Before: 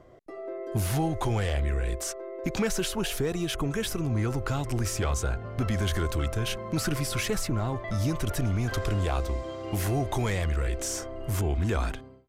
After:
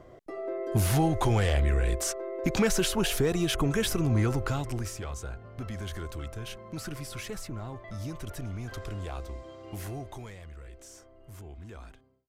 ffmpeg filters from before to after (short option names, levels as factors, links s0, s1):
-af "volume=1.33,afade=t=out:st=4.18:d=0.81:silence=0.251189,afade=t=out:st=9.84:d=0.52:silence=0.375837"